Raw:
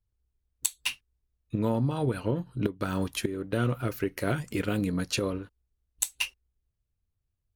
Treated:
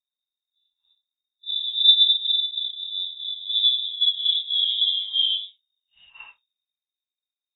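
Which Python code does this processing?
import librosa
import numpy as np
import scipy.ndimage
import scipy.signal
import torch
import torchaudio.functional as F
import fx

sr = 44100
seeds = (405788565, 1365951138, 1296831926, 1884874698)

y = fx.phase_scramble(x, sr, seeds[0], window_ms=200)
y = fx.filter_sweep_lowpass(y, sr, from_hz=160.0, to_hz=1300.0, start_s=3.06, end_s=6.74, q=5.6)
y = fx.freq_invert(y, sr, carrier_hz=3700)
y = fx.band_widen(y, sr, depth_pct=40)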